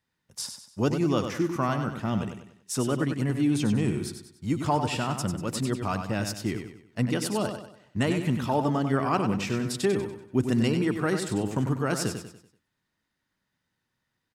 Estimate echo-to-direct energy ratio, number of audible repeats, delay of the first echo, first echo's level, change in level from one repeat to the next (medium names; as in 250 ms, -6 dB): -6.5 dB, 4, 96 ms, -7.5 dB, -8.0 dB